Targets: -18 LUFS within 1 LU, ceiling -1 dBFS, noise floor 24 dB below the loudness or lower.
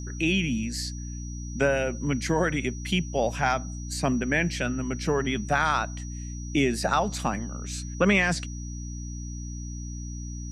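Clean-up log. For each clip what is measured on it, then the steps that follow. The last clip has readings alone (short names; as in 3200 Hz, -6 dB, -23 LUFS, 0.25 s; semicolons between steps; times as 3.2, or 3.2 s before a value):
hum 60 Hz; harmonics up to 300 Hz; hum level -33 dBFS; steady tone 5800 Hz; tone level -44 dBFS; loudness -27.5 LUFS; peak -9.0 dBFS; loudness target -18.0 LUFS
-> de-hum 60 Hz, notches 5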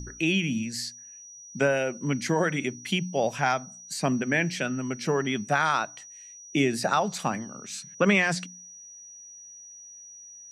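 hum none; steady tone 5800 Hz; tone level -44 dBFS
-> notch 5800 Hz, Q 30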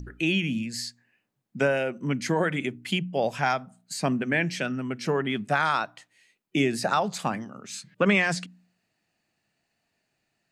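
steady tone none; loudness -27.0 LUFS; peak -9.0 dBFS; loudness target -18.0 LUFS
-> gain +9 dB; limiter -1 dBFS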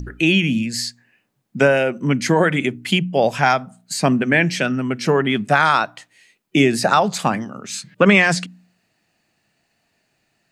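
loudness -18.0 LUFS; peak -1.0 dBFS; noise floor -69 dBFS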